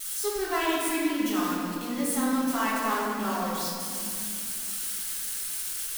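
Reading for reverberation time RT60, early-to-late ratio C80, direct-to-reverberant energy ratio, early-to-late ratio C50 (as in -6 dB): 2.6 s, 0.0 dB, -8.0 dB, -2.0 dB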